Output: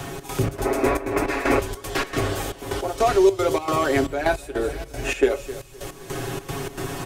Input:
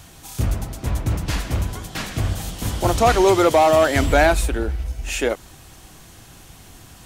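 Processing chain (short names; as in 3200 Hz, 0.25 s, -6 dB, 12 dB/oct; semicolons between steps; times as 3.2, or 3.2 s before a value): comb 7.2 ms, depth 73%; de-hum 46.01 Hz, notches 3; AGC gain up to 9 dB; feedback echo 0.257 s, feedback 47%, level -19.5 dB; reverb RT60 0.30 s, pre-delay 3 ms, DRR 9.5 dB; step gate "xx.xx.xxxx..x..x" 155 bpm -12 dB; 0.55–3.09 bell 150 Hz -11.5 dB 1.4 oct; 0.66–1.6 spectral gain 210–2700 Hz +11 dB; bell 400 Hz +9.5 dB 0.67 oct; three-band squash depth 70%; gain -7.5 dB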